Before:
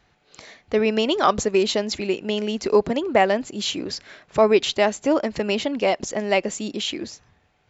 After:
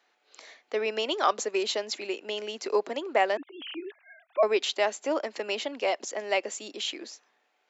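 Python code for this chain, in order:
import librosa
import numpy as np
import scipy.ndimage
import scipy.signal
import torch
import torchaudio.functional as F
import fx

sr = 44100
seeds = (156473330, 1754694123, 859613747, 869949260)

y = fx.sine_speech(x, sr, at=(3.37, 4.43))
y = scipy.signal.sosfilt(scipy.signal.bessel(8, 460.0, 'highpass', norm='mag', fs=sr, output='sos'), y)
y = y * 10.0 ** (-5.0 / 20.0)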